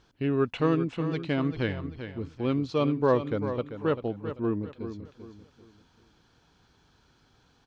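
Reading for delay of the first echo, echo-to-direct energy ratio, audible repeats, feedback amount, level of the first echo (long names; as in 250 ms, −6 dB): 391 ms, −9.5 dB, 3, 33%, −10.0 dB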